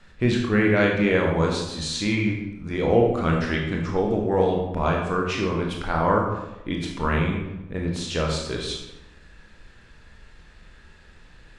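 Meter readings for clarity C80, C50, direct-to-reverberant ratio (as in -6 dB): 6.0 dB, 3.0 dB, -0.5 dB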